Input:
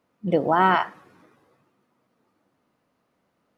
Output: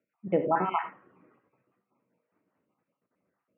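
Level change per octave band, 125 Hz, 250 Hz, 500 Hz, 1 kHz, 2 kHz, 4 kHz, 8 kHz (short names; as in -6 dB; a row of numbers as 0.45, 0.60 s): -8.0 dB, -7.0 dB, -5.0 dB, -8.5 dB, -13.0 dB, -15.5 dB, n/a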